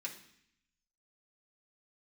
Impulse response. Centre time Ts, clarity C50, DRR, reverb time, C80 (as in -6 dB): 16 ms, 9.5 dB, -3.5 dB, 0.65 s, 13.0 dB